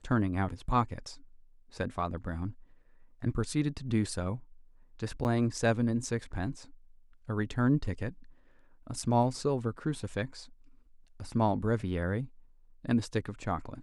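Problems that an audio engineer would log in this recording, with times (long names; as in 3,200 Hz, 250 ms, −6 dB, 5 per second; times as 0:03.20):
0:05.24–0:05.25: drop-out 9.1 ms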